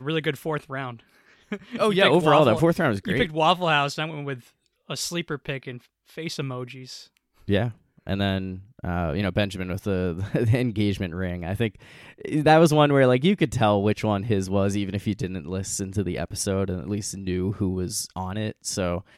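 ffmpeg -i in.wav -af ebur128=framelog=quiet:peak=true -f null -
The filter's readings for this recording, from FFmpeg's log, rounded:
Integrated loudness:
  I:         -24.0 LUFS
  Threshold: -34.7 LUFS
Loudness range:
  LRA:         9.3 LU
  Threshold: -44.5 LUFS
  LRA low:   -30.4 LUFS
  LRA high:  -21.1 LUFS
True peak:
  Peak:       -3.4 dBFS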